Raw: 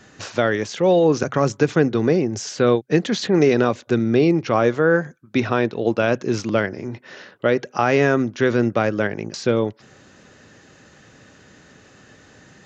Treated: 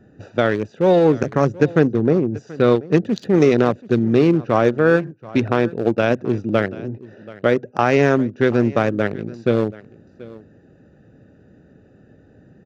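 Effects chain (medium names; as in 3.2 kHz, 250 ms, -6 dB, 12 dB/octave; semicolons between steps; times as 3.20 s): local Wiener filter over 41 samples; 1.87–2.35 s: treble shelf 2.1 kHz -10 dB; on a send: delay 732 ms -20 dB; on the sum: trim +2.5 dB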